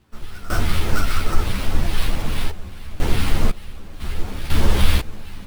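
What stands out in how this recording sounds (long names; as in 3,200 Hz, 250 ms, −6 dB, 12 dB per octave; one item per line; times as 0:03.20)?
phaser sweep stages 2, 2.4 Hz, lowest notch 660–3,800 Hz
sample-and-hold tremolo 2 Hz, depth 90%
aliases and images of a low sample rate 6,900 Hz, jitter 20%
a shimmering, thickened sound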